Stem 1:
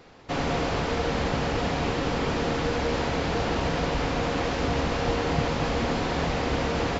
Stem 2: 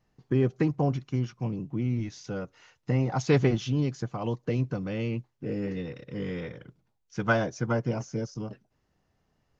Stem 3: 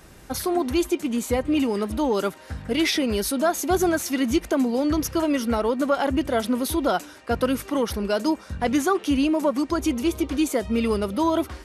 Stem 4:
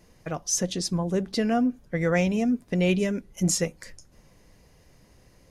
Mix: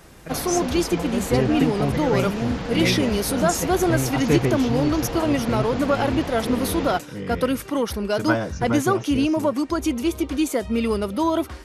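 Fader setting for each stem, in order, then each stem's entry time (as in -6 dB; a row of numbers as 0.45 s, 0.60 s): -5.0 dB, +1.5 dB, +0.5 dB, -3.0 dB; 0.00 s, 1.00 s, 0.00 s, 0.00 s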